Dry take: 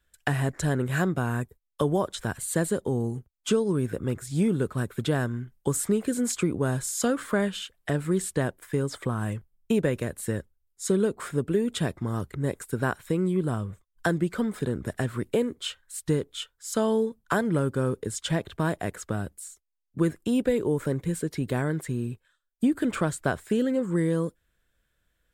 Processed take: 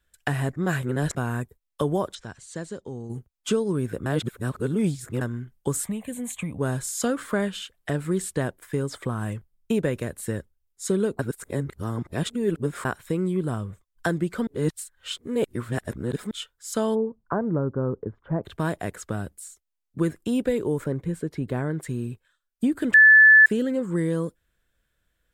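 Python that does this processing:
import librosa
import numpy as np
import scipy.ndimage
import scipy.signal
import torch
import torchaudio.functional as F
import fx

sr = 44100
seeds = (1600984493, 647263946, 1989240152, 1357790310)

y = fx.ladder_lowpass(x, sr, hz=7000.0, resonance_pct=45, at=(2.14, 3.09), fade=0.02)
y = fx.fixed_phaser(y, sr, hz=1400.0, stages=6, at=(5.86, 6.59))
y = fx.lowpass(y, sr, hz=1200.0, slope=24, at=(16.94, 18.43), fade=0.02)
y = fx.high_shelf(y, sr, hz=2700.0, db=-11.0, at=(20.84, 21.83))
y = fx.edit(y, sr, fx.reverse_span(start_s=0.56, length_s=0.59),
    fx.reverse_span(start_s=4.06, length_s=1.15),
    fx.reverse_span(start_s=11.19, length_s=1.66),
    fx.reverse_span(start_s=14.47, length_s=1.84),
    fx.bleep(start_s=22.94, length_s=0.52, hz=1740.0, db=-9.0), tone=tone)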